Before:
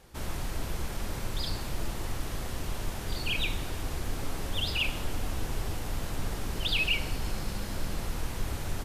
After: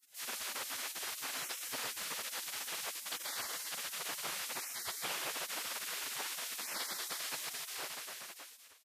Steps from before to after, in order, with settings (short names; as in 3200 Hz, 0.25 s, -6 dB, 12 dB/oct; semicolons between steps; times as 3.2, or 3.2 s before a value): ending faded out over 1.40 s; feedback echo 0.218 s, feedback 40%, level -13 dB; spectral gate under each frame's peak -30 dB weak; gain +4.5 dB